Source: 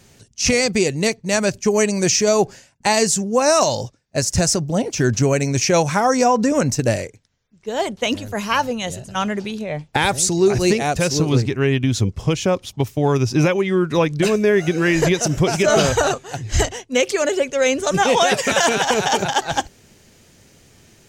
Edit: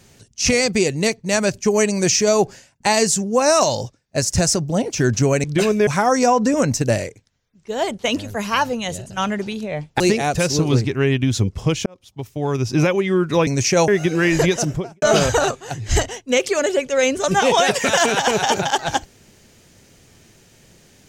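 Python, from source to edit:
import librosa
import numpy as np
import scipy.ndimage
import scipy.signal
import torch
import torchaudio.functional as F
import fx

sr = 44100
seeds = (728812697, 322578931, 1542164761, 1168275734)

y = fx.studio_fade_out(x, sr, start_s=15.17, length_s=0.48)
y = fx.edit(y, sr, fx.swap(start_s=5.44, length_s=0.41, other_s=14.08, other_length_s=0.43),
    fx.cut(start_s=9.98, length_s=0.63),
    fx.fade_in_span(start_s=12.47, length_s=1.04), tone=tone)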